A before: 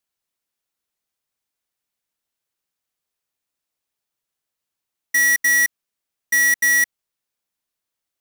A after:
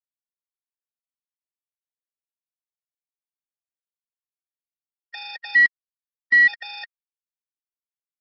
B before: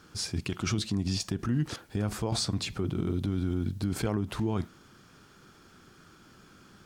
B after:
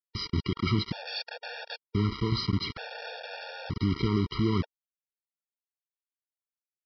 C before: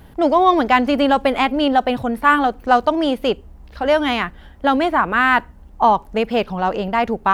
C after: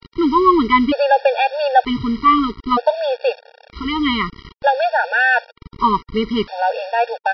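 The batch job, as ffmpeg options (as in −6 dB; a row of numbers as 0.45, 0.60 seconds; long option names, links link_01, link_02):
-af "aresample=11025,acrusher=bits=5:mix=0:aa=0.000001,aresample=44100,afftfilt=real='re*gt(sin(2*PI*0.54*pts/sr)*(1-2*mod(floor(b*sr/1024/470),2)),0)':imag='im*gt(sin(2*PI*0.54*pts/sr)*(1-2*mod(floor(b*sr/1024/470),2)),0)':win_size=1024:overlap=0.75,volume=3.5dB"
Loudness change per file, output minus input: −0.5, +0.5, +0.5 LU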